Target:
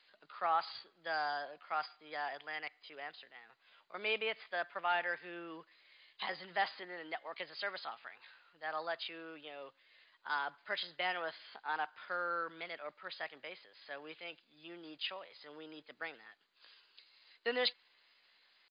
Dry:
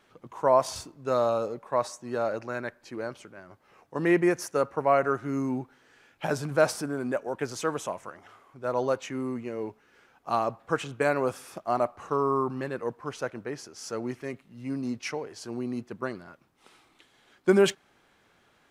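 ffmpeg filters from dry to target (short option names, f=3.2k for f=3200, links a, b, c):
-filter_complex "[0:a]asetrate=55563,aresample=44100,atempo=0.793701,aderivative,acrossover=split=110|1100|4000[a][b][c][d];[c]asoftclip=type=tanh:threshold=-38dB[e];[a][b][e][d]amix=inputs=4:normalize=0,volume=6.5dB" -ar 16000 -c:a mp2 -b:a 64k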